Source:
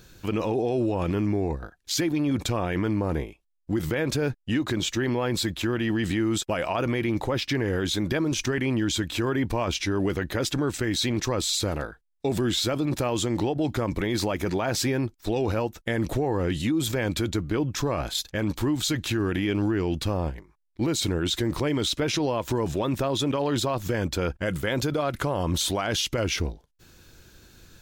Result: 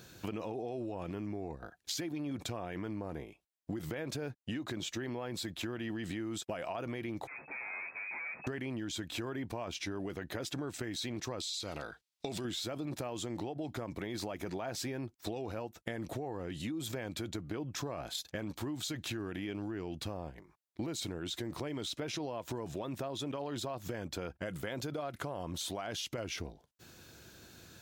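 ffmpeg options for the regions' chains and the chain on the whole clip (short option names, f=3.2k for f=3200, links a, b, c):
-filter_complex "[0:a]asettb=1/sr,asplit=3[a][b][c];[a]atrim=end=7.274[d];[b]atrim=start=7.27:end=8.47,asetpts=PTS-STARTPTS,afade=t=in:d=0.004:c=qsin,afade=t=out:st=1.196:d=0.004:c=qsin,aeval=exprs='(tanh(89.1*val(0)+0.1)-tanh(0.1))/89.1':c=same,asplit=2[e][f];[f]adelay=13,volume=-9.5dB[g];[e][g]amix=inputs=2:normalize=0,atrim=end_sample=52920,lowpass=f=2.2k:t=q:w=0.5098,lowpass=f=2.2k:t=q:w=0.6013,lowpass=f=2.2k:t=q:w=0.9,lowpass=f=2.2k:t=q:w=2.563,afreqshift=-2600[h];[c]atrim=start=8.466[i];[d][h]acrossfade=d=0.004:c1=hsin:c2=qsin[j];[j][i]acrossfade=d=0.004:c1=qsin:c2=hsin,asettb=1/sr,asplit=3[k][l][m];[k]atrim=end=11.404[n];[l]atrim=start=11.4:end=12.45,asetpts=PTS-STARTPTS,afade=t=in:d=0.004:c=qsin,afade=t=out:st=1.046:d=0.004:c=qsin,equalizer=f=4.2k:t=o:w=2.3:g=12.5,acompressor=threshold=-25dB:ratio=4:attack=3.2:release=140:knee=1:detection=peak,bandreject=f=1.7k:w=12[o];[m]atrim=start=12.446[p];[n][o]acrossfade=d=0.004:c1=hsin:c2=qsin[q];[q][p]acrossfade=d=0.004:c1=qsin:c2=hsin,highpass=95,equalizer=f=690:w=4.1:g=5,acompressor=threshold=-35dB:ratio=6,volume=-1.5dB"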